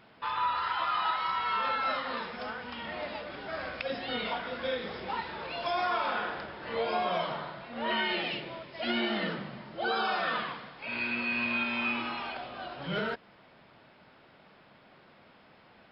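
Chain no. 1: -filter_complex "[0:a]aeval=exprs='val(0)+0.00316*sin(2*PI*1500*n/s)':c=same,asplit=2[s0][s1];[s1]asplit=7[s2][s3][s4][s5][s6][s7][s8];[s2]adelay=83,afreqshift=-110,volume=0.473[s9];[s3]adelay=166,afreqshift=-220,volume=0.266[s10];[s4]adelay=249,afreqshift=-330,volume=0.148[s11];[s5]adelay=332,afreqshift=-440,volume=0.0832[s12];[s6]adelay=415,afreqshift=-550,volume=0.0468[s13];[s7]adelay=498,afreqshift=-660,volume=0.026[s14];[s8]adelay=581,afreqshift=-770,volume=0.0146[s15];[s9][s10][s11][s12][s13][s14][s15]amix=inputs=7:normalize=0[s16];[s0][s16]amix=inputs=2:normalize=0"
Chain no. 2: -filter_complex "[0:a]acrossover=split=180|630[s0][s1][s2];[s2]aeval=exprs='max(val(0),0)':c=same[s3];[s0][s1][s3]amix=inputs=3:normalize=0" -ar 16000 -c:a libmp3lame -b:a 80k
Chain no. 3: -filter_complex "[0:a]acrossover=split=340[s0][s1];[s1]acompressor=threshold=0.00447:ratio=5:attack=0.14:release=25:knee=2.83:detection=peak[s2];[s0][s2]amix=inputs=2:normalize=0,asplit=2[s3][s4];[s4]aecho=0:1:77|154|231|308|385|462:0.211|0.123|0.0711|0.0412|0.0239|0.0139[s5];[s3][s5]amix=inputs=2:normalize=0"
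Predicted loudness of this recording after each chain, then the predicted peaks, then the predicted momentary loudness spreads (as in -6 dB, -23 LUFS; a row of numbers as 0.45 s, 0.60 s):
-31.0 LUFS, -36.5 LUFS, -43.0 LUFS; -16.0 dBFS, -18.5 dBFS, -26.5 dBFS; 21 LU, 9 LU, 18 LU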